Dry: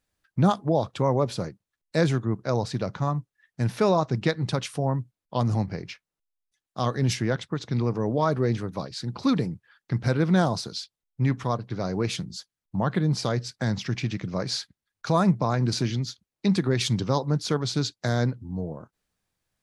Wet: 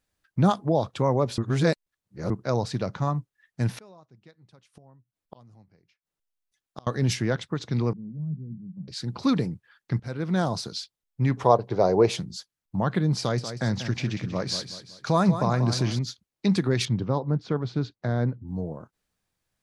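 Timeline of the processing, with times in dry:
0:01.38–0:02.30: reverse
0:03.78–0:06.87: gate with flip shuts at −28 dBFS, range −29 dB
0:07.93–0:08.88: flat-topped band-pass 170 Hz, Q 2.9
0:10.00–0:10.65: fade in, from −15 dB
0:11.37–0:12.19: flat-topped bell 600 Hz +11.5 dB
0:13.19–0:15.99: repeating echo 188 ms, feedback 39%, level −10 dB
0:16.85–0:18.48: head-to-tape spacing loss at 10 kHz 34 dB

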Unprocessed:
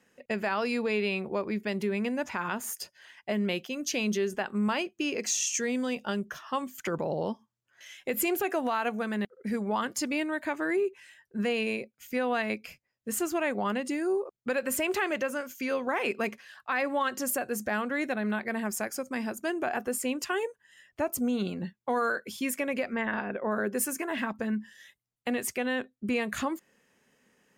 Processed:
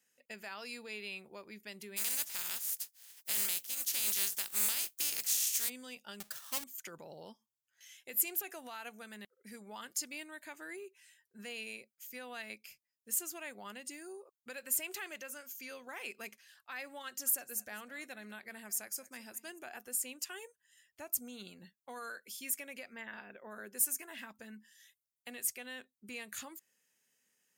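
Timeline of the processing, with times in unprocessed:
0:01.96–0:05.68: compressing power law on the bin magnitudes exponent 0.29
0:06.20–0:06.64: each half-wave held at its own peak
0:17.05–0:19.64: single-tap delay 206 ms −18.5 dB
whole clip: first-order pre-emphasis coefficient 0.9; notch filter 1,100 Hz, Q 19; level −1.5 dB

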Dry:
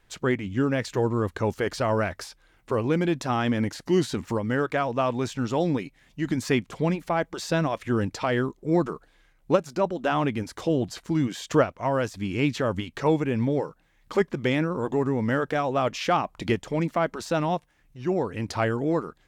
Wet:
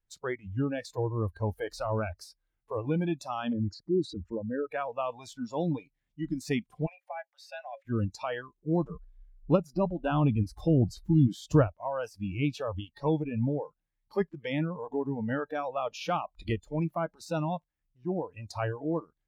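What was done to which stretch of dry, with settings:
0:03.53–0:04.71: spectral envelope exaggerated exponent 2
0:06.86–0:07.85: Chebyshev high-pass with heavy ripple 530 Hz, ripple 9 dB
0:08.90–0:11.68: low-shelf EQ 290 Hz +8.5 dB
whole clip: noise reduction from a noise print of the clip's start 21 dB; low-shelf EQ 160 Hz +11.5 dB; level −7.5 dB

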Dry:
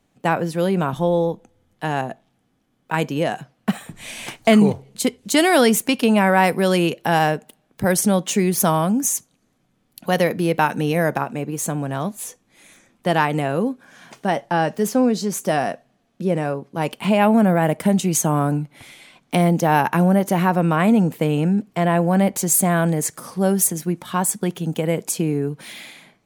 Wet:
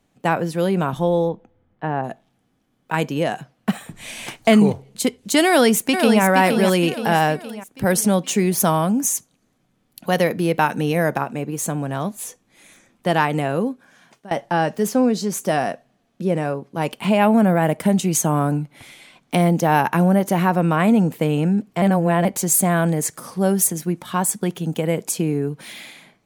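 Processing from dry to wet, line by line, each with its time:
0:01.28–0:02.03: low-pass filter 3,200 Hz → 1,300 Hz
0:05.46–0:06.22: delay throw 470 ms, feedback 50%, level −6 dB
0:13.57–0:14.31: fade out, to −21 dB
0:21.82–0:22.25: reverse

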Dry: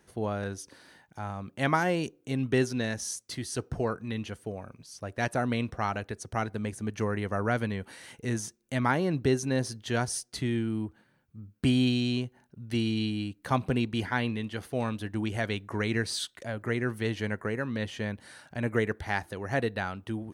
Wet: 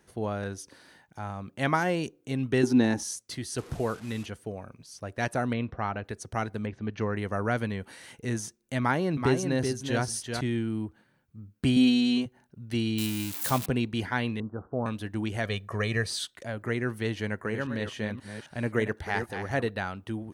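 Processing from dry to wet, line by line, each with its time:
0:02.63–0:03.03: hollow resonant body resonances 290/830 Hz, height 15 dB, ringing for 25 ms
0:03.58–0:04.26: linear delta modulator 64 kbit/s, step −42 dBFS
0:05.53–0:06.05: high-frequency loss of the air 240 metres
0:06.65–0:07.15: low-pass filter 3,100 Hz → 6,200 Hz 24 dB per octave
0:08.79–0:10.41: single-tap delay 380 ms −5.5 dB
0:11.76–0:12.26: comb filter 4.3 ms, depth 96%
0:12.98–0:13.66: spike at every zero crossing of −21.5 dBFS
0:14.40–0:14.86: Butterworth low-pass 1,400 Hz 72 dB per octave
0:15.45–0:16.08: comb filter 1.7 ms
0:17.14–0:19.70: delay that plays each chunk backwards 265 ms, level −8 dB

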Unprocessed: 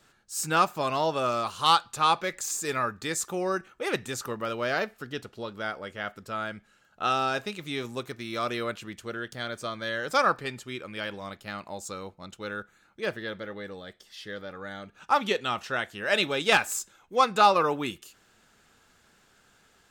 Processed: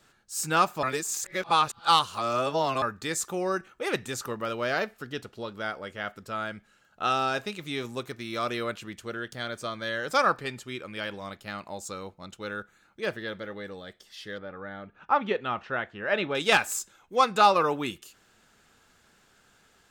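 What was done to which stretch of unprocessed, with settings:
0:00.83–0:02.82: reverse
0:14.38–0:16.35: low-pass filter 2,100 Hz

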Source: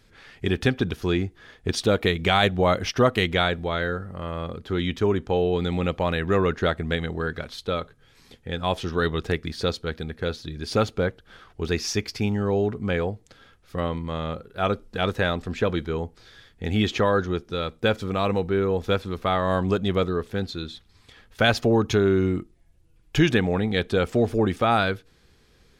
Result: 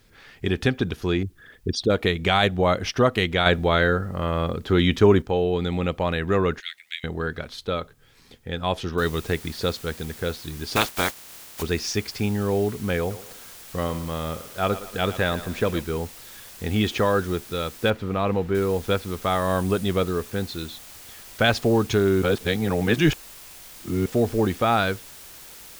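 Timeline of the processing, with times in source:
0:01.23–0:01.90: spectral envelope exaggerated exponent 2
0:03.46–0:05.22: clip gain +6.5 dB
0:06.60–0:07.04: Chebyshev high-pass filter 2,100 Hz, order 4
0:08.98: noise floor change −69 dB −44 dB
0:10.75–0:11.61: ceiling on every frequency bin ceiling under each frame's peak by 25 dB
0:12.99–0:15.84: feedback echo with a high-pass in the loop 115 ms, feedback 45%, high-pass 290 Hz, level −12.5 dB
0:17.90–0:18.55: bass and treble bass +1 dB, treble −15 dB
0:19.30–0:19.84: parametric band 9,400 Hz +6.5 dB 0.26 octaves
0:22.22–0:24.06: reverse

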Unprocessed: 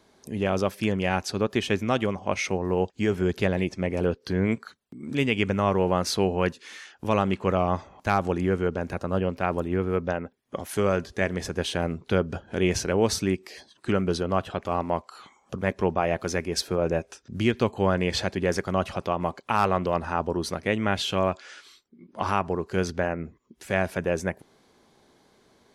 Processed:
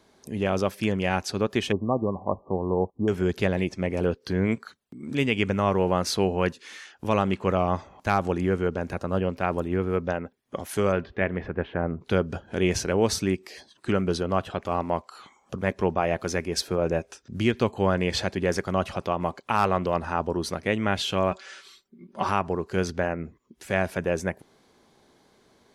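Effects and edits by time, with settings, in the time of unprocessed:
0:01.72–0:03.08: linear-phase brick-wall low-pass 1,200 Hz
0:10.91–0:12.00: low-pass filter 3,900 Hz → 1,500 Hz 24 dB per octave
0:21.31–0:22.29: comb filter 5.2 ms

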